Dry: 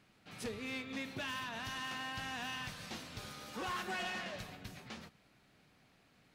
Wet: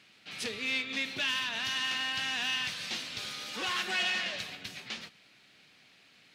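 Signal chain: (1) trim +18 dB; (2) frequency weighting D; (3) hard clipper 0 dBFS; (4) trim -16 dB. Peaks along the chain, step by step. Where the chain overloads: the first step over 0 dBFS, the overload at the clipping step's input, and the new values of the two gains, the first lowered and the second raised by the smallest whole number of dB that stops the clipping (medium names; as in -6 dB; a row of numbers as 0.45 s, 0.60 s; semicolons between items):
-13.0 dBFS, -4.0 dBFS, -4.0 dBFS, -20.0 dBFS; nothing clips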